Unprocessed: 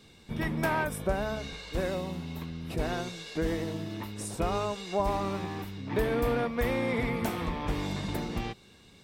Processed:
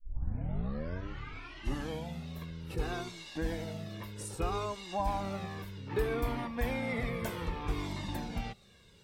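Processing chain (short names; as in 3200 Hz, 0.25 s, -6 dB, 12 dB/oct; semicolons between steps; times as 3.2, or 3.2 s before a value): tape start at the beginning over 2.27 s; cascading flanger falling 0.63 Hz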